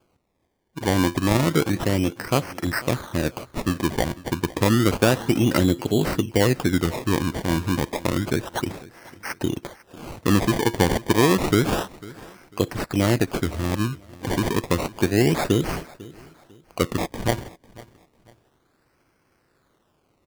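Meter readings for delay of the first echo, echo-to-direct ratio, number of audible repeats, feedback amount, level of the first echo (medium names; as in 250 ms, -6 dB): 498 ms, -20.0 dB, 2, 32%, -20.5 dB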